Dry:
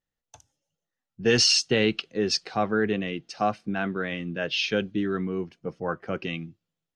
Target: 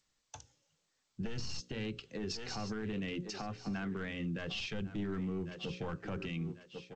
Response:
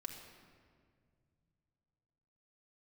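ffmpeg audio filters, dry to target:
-filter_complex "[0:a]asettb=1/sr,asplit=3[a][b][c];[a]atrim=end=1.594[d];[b]atrim=start=1.59:end=3.97,asetpts=PTS-STARTPTS,afade=t=in:d=0.004:c=qsin,afade=t=out:st=2.376:d=0.004:c=qsin,acompressor=threshold=-26dB:ratio=4[e];[c]atrim=start=3.966[f];[d][e]acrossfade=d=0.004:c1=hsin:c2=qsin[g];[g][f]acrossfade=d=0.004:c1=qsin:c2=hsin,aeval=exprs='clip(val(0),-1,0.0596)':c=same,equalizer=f=660:t=o:w=0.22:g=-5.5,bandreject=f=60:t=h:w=6,bandreject=f=120:t=h:w=6,bandreject=f=180:t=h:w=6,bandreject=f=240:t=h:w=6,bandreject=f=300:t=h:w=6,bandreject=f=360:t=h:w=6,bandreject=f=420:t=h:w=6,bandreject=f=480:t=h:w=6,bandreject=f=540:t=h:w=6,aecho=1:1:1094|2188:0.133|0.0227,acrossover=split=160[h][i];[i]acompressor=threshold=-40dB:ratio=10[j];[h][j]amix=inputs=2:normalize=0,alimiter=level_in=11dB:limit=-24dB:level=0:latency=1:release=37,volume=-11dB,volume=4.5dB" -ar 16000 -c:a g722

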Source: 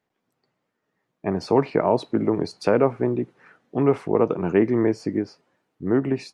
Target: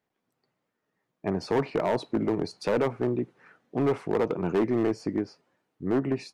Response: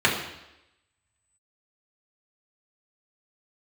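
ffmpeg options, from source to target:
-af "asoftclip=type=hard:threshold=-15.5dB,volume=-3.5dB"

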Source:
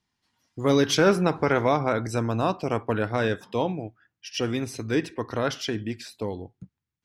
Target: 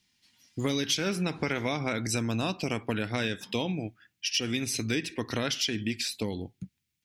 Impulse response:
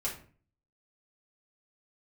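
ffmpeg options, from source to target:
-af "firequalizer=gain_entry='entry(120,0);entry(200,4);entry(440,-3);entry(1100,-5);entry(2300,10)':delay=0.05:min_phase=1,acompressor=threshold=-27dB:ratio=6,volume=1dB"

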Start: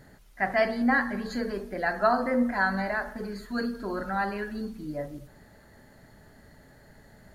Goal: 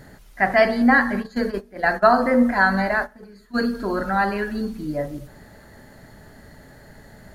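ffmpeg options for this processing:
-filter_complex "[0:a]asplit=3[a][b][c];[a]afade=t=out:st=1.19:d=0.02[d];[b]agate=range=-17dB:threshold=-31dB:ratio=16:detection=peak,afade=t=in:st=1.19:d=0.02,afade=t=out:st=3.65:d=0.02[e];[c]afade=t=in:st=3.65:d=0.02[f];[d][e][f]amix=inputs=3:normalize=0,volume=8dB"

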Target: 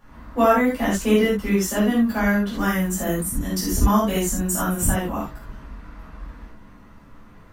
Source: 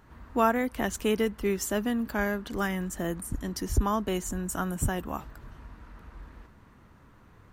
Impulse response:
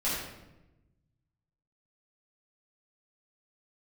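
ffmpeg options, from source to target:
-filter_complex "[0:a]asettb=1/sr,asplit=3[a][b][c];[a]atrim=end=2.674[d];[b]atrim=start=2.67:end=4.88,asetpts=PTS-STARTPTS,afade=t=in:d=0.004:c=qsin,afade=t=out:st=2.206:d=0.004:c=qsin,highshelf=f=7.6k:g=11[e];[c]atrim=start=4.876[f];[d][e]acrossfade=d=0.004:c1=hsin:c2=qsin[g];[g][f]acrossfade=d=0.004:c1=qsin:c2=hsin[h];[1:a]atrim=start_sample=2205,atrim=end_sample=4410[i];[h][i]afir=irnorm=-1:irlink=0"

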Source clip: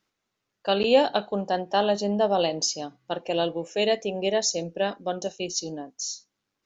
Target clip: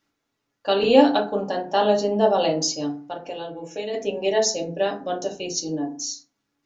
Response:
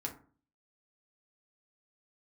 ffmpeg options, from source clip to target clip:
-filter_complex "[0:a]asplit=3[a][b][c];[a]afade=t=out:st=3:d=0.02[d];[b]acompressor=threshold=-32dB:ratio=6,afade=t=in:st=3:d=0.02,afade=t=out:st=3.93:d=0.02[e];[c]afade=t=in:st=3.93:d=0.02[f];[d][e][f]amix=inputs=3:normalize=0[g];[1:a]atrim=start_sample=2205[h];[g][h]afir=irnorm=-1:irlink=0,volume=3dB"

